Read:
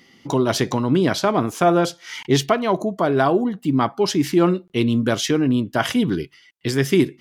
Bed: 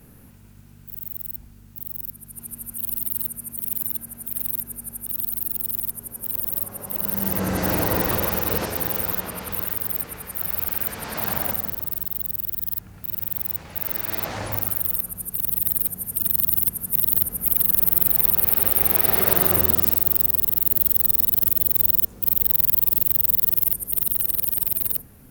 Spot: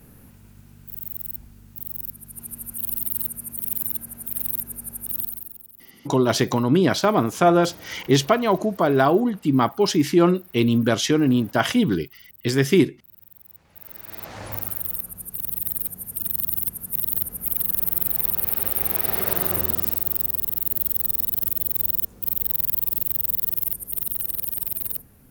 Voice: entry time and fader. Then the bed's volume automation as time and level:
5.80 s, 0.0 dB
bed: 0:05.20 0 dB
0:05.72 −22 dB
0:13.43 −22 dB
0:14.53 −4.5 dB

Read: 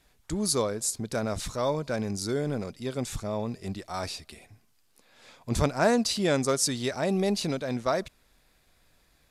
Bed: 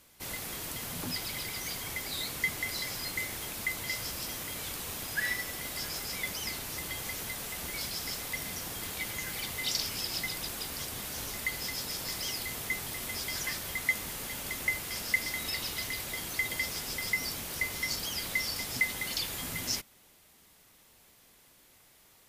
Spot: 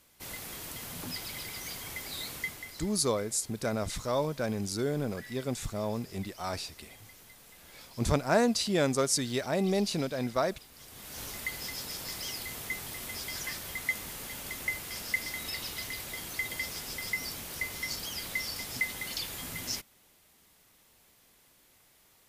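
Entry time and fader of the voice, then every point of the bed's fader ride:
2.50 s, −2.0 dB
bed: 0:02.35 −3 dB
0:02.97 −16.5 dB
0:10.72 −16.5 dB
0:11.22 −2.5 dB

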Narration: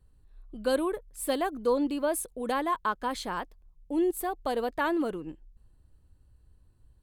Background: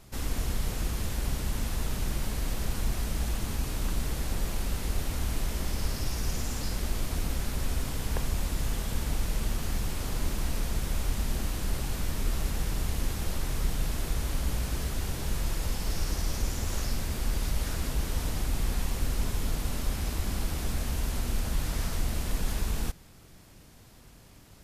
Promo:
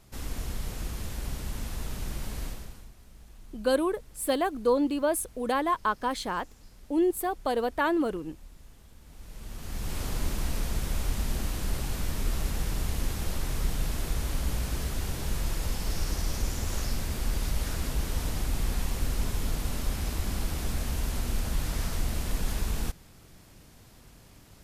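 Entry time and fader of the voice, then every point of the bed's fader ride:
3.00 s, +2.0 dB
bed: 0:02.45 −4 dB
0:02.94 −22.5 dB
0:09.00 −22.5 dB
0:09.96 0 dB

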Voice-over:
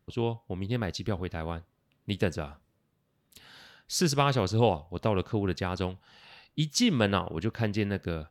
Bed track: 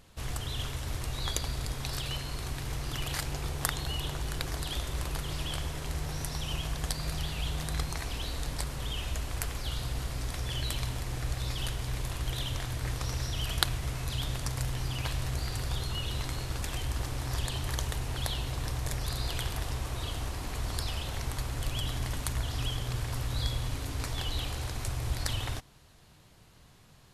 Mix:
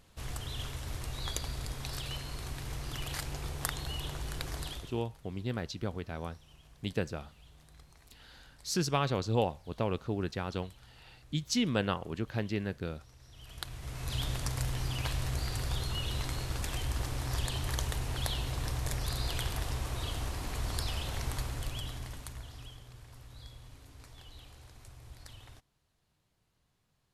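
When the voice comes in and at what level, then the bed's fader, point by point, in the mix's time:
4.75 s, −5.0 dB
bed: 0:04.67 −4 dB
0:05.09 −24.5 dB
0:13.19 −24.5 dB
0:14.15 −1 dB
0:21.37 −1 dB
0:22.92 −18.5 dB

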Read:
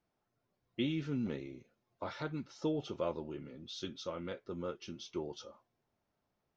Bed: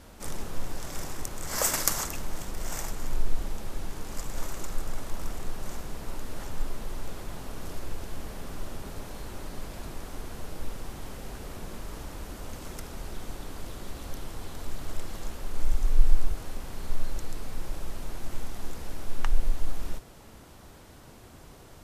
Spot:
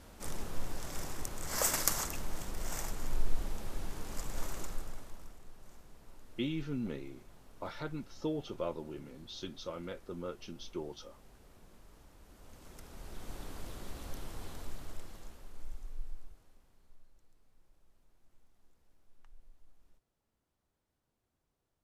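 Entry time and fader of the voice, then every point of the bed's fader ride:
5.60 s, −1.0 dB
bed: 0:04.60 −4.5 dB
0:05.39 −19.5 dB
0:12.18 −19.5 dB
0:13.39 −5.5 dB
0:14.50 −5.5 dB
0:17.12 −34 dB

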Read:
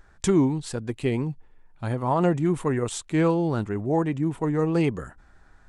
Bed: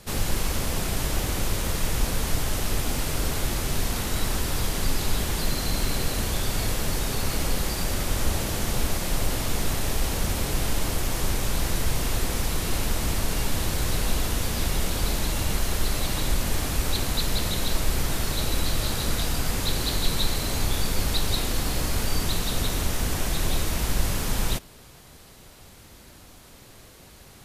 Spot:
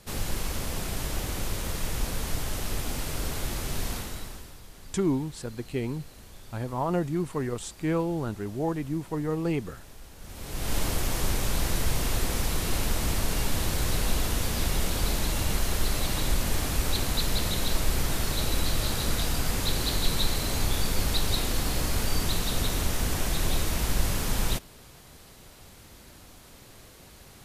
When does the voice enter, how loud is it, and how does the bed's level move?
4.70 s, −5.5 dB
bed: 0:03.93 −5 dB
0:04.61 −22 dB
0:10.16 −22 dB
0:10.75 −1.5 dB

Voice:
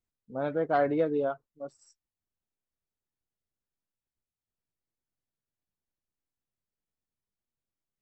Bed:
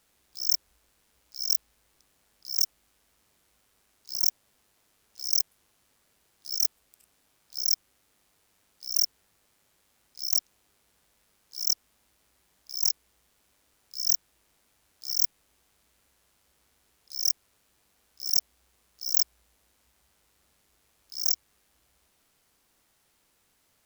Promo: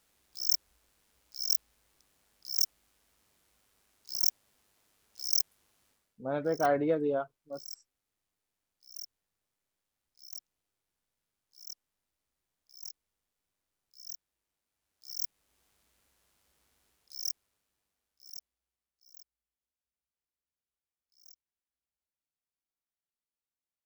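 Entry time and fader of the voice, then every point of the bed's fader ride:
5.90 s, −1.5 dB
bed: 0:05.89 −3 dB
0:06.24 −19.5 dB
0:14.65 −19.5 dB
0:15.63 −4.5 dB
0:16.85 −4.5 dB
0:19.21 −31.5 dB

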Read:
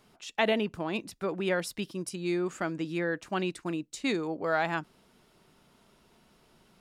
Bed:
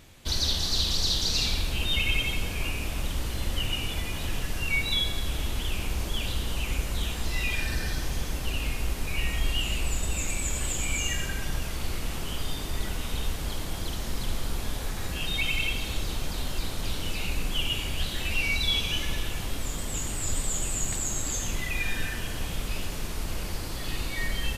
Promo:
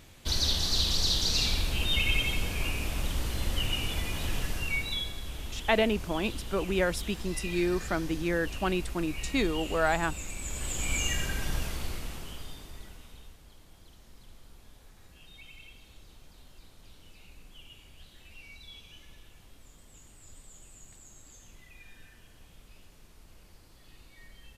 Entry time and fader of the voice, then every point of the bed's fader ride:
5.30 s, +1.5 dB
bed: 0:04.45 −1 dB
0:05.17 −9 dB
0:10.35 −9 dB
0:10.95 −1 dB
0:11.62 −1 dB
0:13.44 −23 dB

